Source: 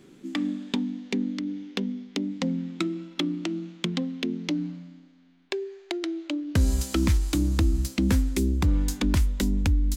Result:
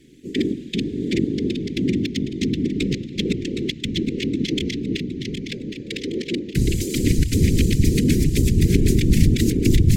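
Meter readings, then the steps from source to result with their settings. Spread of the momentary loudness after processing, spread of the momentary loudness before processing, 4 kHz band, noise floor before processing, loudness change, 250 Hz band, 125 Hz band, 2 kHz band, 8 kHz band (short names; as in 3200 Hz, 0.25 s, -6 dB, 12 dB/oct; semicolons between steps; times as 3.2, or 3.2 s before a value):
10 LU, 9 LU, +6.5 dB, -53 dBFS, +6.0 dB, +6.5 dB, +8.0 dB, +5.5 dB, +6.5 dB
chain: regenerating reverse delay 0.383 s, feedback 67%, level -1 dB; elliptic band-stop 310–2000 Hz, stop band 40 dB; whisperiser; gain +3.5 dB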